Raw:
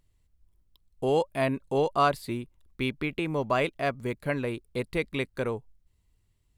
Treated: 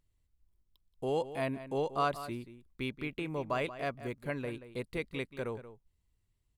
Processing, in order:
slap from a distant wall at 31 metres, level −13 dB
level −7.5 dB

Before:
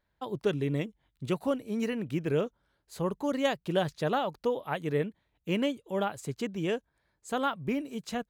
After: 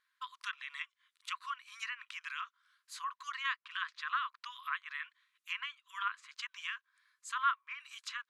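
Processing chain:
transient designer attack −2 dB, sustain +2 dB
linear-phase brick-wall band-pass 990–13,000 Hz
treble cut that deepens with the level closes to 2,100 Hz, closed at −38.5 dBFS
level +3.5 dB

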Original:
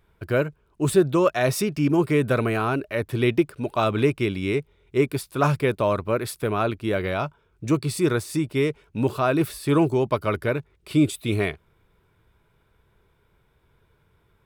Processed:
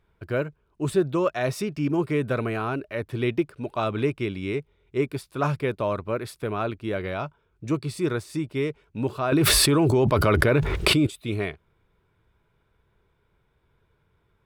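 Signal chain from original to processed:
high-shelf EQ 8,600 Hz −10 dB
0:09.32–0:11.07: envelope flattener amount 100%
level −4 dB

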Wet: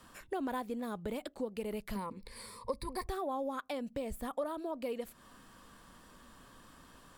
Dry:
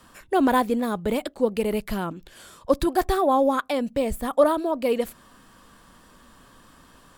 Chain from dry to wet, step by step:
0:01.95–0:03.07: EQ curve with evenly spaced ripples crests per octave 0.92, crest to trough 17 dB
downward compressor 3 to 1, threshold −33 dBFS, peak gain reduction 16.5 dB
level −5 dB

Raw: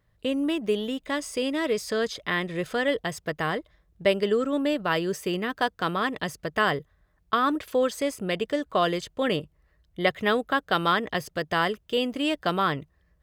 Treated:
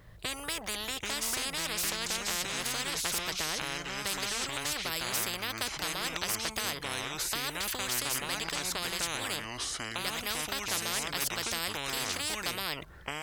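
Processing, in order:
delay with pitch and tempo change per echo 721 ms, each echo −4 semitones, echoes 2
every bin compressed towards the loudest bin 10 to 1
level −5.5 dB

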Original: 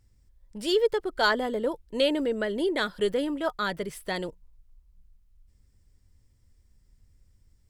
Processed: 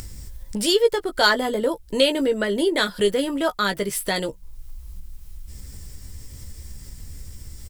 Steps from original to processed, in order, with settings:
double-tracking delay 15 ms −7 dB
in parallel at −2.5 dB: downward compressor, threshold −33 dBFS, peak gain reduction 16 dB
on the sum: high-shelf EQ 4,800 Hz +10.5 dB
upward compression, threshold −24 dBFS
level +2.5 dB

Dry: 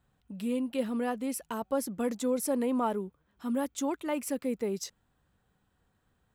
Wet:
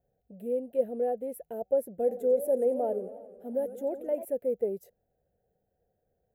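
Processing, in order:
drawn EQ curve 200 Hz 0 dB, 290 Hz −3 dB, 480 Hz +14 dB, 720 Hz +10 dB, 1,100 Hz −26 dB, 1,600 Hz −8 dB, 5,200 Hz −24 dB, 7,500 Hz −16 dB, 13,000 Hz +4 dB
0:01.89–0:04.25: feedback echo with a swinging delay time 90 ms, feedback 70%, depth 199 cents, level −13.5 dB
level −7 dB

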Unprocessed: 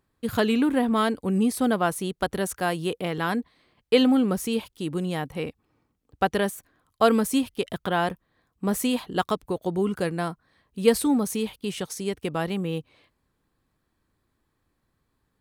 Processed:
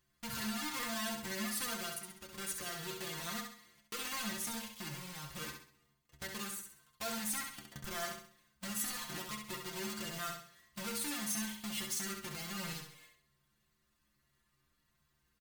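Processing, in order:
each half-wave held at its own peak
comb filter 5.7 ms, depth 60%
0:07.02–0:07.76: volume swells 770 ms
downward compressor 8 to 1, threshold −24 dBFS, peak gain reduction 15.5 dB
brickwall limiter −24 dBFS, peak gain reduction 10 dB
0:01.93–0:02.37: output level in coarse steps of 19 dB
0:04.92–0:05.33: hard clipping −33 dBFS, distortion −17 dB
guitar amp tone stack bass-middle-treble 5-5-5
stiff-string resonator 69 Hz, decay 0.28 s, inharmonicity 0.008
repeating echo 66 ms, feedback 39%, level −5.5 dB
level +11 dB

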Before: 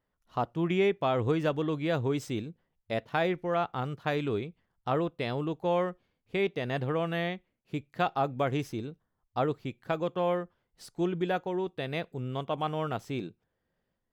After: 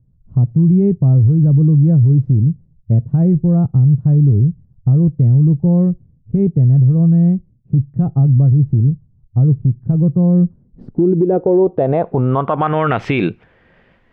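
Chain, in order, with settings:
low-pass filter sweep 130 Hz → 2,400 Hz, 0:10.23–0:13.07
downward compressor 6 to 1, threshold −33 dBFS, peak gain reduction 14 dB
boost into a limiter +32 dB
level −5 dB

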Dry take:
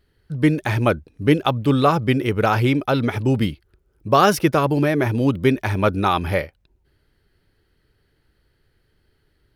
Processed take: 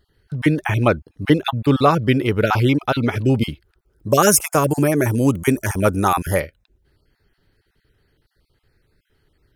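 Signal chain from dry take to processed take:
time-frequency cells dropped at random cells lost 22%
0:04.09–0:06.40: high shelf with overshoot 5,500 Hz +11.5 dB, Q 3
level +2 dB

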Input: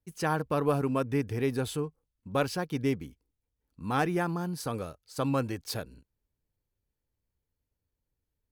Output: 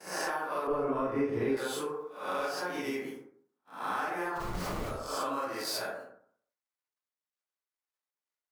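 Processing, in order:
peak hold with a rise ahead of every peak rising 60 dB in 0.51 s
surface crackle 74 per second −55 dBFS
high-pass filter 520 Hz 12 dB per octave
in parallel at −4 dB: soft clipping −22 dBFS, distortion −15 dB
on the sum: noise gate −54 dBFS, range −25 dB
0:04.35–0:04.85: comparator with hysteresis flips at −32.5 dBFS
convolution reverb RT60 0.60 s, pre-delay 32 ms, DRR −9 dB
downward compressor 6 to 1, threshold −26 dBFS, peak gain reduction 13.5 dB
0:00.67–0:01.57: spectral tilt −4 dB per octave
level −5.5 dB

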